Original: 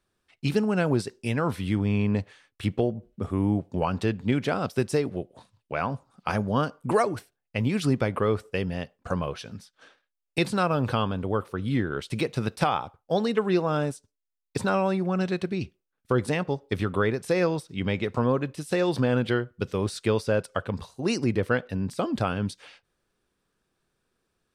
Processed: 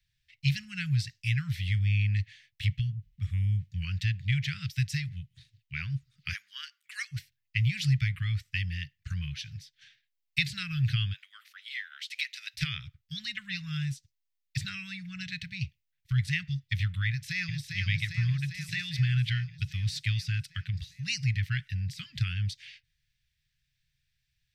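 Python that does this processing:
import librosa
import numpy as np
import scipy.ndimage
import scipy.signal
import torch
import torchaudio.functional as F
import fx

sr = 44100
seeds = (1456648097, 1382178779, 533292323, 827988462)

y = fx.highpass(x, sr, hz=fx.line((6.32, 620.0), (7.11, 1300.0)), slope=24, at=(6.32, 7.11), fade=0.02)
y = fx.highpass(y, sr, hz=910.0, slope=24, at=(11.12, 12.53), fade=0.02)
y = fx.echo_throw(y, sr, start_s=17.08, length_s=0.61, ms=400, feedback_pct=70, wet_db=-4.5)
y = scipy.signal.sosfilt(scipy.signal.cheby1(4, 1.0, [140.0, 1900.0], 'bandstop', fs=sr, output='sos'), y)
y = fx.peak_eq(y, sr, hz=9400.0, db=-13.0, octaves=0.67)
y = y * librosa.db_to_amplitude(3.5)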